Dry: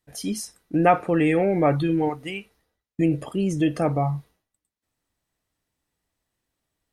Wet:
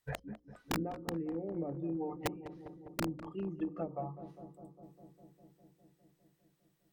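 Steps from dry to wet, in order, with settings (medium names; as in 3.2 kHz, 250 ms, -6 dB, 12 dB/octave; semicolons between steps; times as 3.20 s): inverted gate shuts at -23 dBFS, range -25 dB; spectral noise reduction 16 dB; bass shelf 450 Hz -6 dB; hum notches 60/120/180/240/300/360/420/480/540 Hz; in parallel at -3 dB: saturation -36 dBFS, distortion -10 dB; on the sum: low-pass that closes with the level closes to 320 Hz, closed at -41.5 dBFS; integer overflow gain 37 dB; on a send: filtered feedback delay 202 ms, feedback 81%, low-pass 1.4 kHz, level -12.5 dB; on the sum: trim +11 dB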